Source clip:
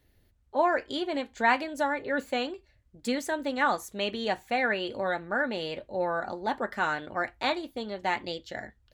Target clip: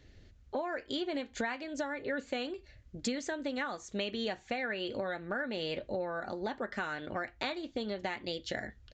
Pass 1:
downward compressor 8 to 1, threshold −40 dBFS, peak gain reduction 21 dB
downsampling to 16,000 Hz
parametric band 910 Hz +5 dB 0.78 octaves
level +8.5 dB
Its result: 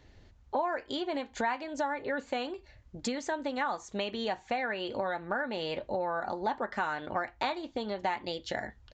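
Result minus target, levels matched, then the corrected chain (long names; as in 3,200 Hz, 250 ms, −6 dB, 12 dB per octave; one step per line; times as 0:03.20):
1,000 Hz band +5.0 dB
downward compressor 8 to 1, threshold −40 dBFS, peak gain reduction 21 dB
downsampling to 16,000 Hz
parametric band 910 Hz −6 dB 0.78 octaves
level +8.5 dB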